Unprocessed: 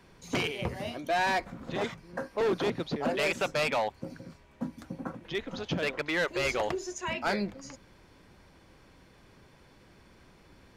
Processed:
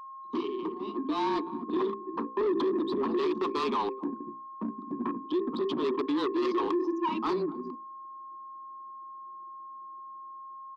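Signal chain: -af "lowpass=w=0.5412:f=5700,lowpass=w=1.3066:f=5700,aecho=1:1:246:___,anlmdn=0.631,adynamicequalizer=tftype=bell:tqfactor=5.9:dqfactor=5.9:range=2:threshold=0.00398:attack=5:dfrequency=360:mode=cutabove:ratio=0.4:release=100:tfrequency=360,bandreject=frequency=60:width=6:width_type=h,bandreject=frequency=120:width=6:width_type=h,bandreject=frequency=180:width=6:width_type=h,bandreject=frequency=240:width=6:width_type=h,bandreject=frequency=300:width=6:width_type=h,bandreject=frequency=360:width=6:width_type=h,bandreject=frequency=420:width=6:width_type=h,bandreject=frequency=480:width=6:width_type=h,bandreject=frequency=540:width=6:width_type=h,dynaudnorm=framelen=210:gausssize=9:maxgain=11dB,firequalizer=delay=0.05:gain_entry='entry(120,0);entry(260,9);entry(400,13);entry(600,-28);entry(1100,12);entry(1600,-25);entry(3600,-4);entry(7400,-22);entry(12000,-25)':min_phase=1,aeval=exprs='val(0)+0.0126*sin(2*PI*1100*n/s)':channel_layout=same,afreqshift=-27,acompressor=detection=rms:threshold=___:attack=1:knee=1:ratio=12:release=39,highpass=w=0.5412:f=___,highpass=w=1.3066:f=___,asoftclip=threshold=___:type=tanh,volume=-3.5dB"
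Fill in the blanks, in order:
0.133, -16dB, 270, 270, -19dB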